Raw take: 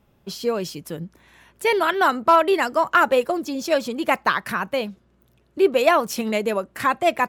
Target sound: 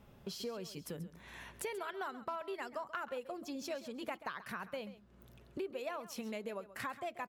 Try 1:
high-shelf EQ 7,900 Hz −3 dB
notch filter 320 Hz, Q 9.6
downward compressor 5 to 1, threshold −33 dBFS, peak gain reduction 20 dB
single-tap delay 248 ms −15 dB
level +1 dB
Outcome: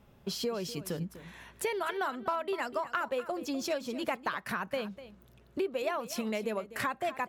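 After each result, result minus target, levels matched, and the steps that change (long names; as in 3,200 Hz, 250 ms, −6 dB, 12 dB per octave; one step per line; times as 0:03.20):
echo 114 ms late; downward compressor: peak gain reduction −8.5 dB
change: single-tap delay 134 ms −15 dB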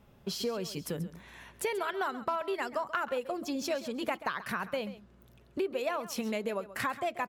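downward compressor: peak gain reduction −8.5 dB
change: downward compressor 5 to 1, threshold −43.5 dBFS, peak gain reduction 28 dB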